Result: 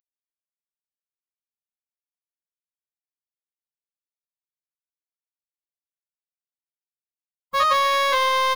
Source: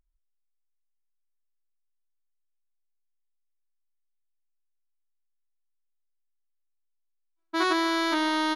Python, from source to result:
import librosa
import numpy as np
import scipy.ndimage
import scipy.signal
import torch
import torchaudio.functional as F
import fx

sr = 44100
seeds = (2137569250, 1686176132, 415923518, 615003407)

y = fx.delta_hold(x, sr, step_db=-43.0)
y = fx.pitch_keep_formants(y, sr, semitones=9.0)
y = y * 10.0 ** (6.0 / 20.0)